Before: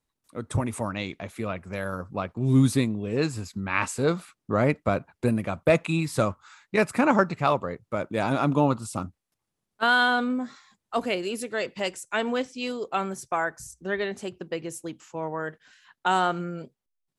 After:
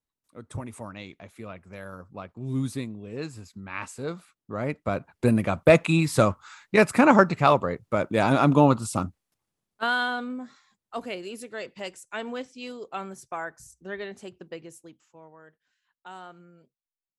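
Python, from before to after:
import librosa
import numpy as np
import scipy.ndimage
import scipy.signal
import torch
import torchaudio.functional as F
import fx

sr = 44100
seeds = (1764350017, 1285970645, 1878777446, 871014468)

y = fx.gain(x, sr, db=fx.line((4.53, -9.0), (5.36, 4.0), (9.04, 4.0), (10.21, -7.0), (14.52, -7.0), (15.36, -20.0)))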